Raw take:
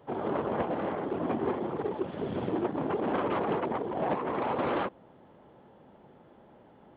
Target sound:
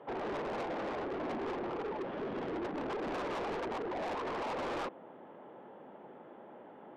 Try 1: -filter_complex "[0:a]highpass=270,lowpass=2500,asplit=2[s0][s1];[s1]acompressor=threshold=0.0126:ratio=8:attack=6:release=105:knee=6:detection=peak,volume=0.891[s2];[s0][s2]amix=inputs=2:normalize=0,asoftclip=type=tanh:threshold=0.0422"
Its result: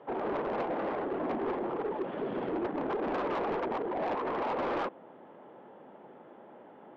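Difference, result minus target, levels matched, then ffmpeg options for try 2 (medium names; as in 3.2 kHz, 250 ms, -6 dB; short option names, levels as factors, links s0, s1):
saturation: distortion -6 dB
-filter_complex "[0:a]highpass=270,lowpass=2500,asplit=2[s0][s1];[s1]acompressor=threshold=0.0126:ratio=8:attack=6:release=105:knee=6:detection=peak,volume=0.891[s2];[s0][s2]amix=inputs=2:normalize=0,asoftclip=type=tanh:threshold=0.0178"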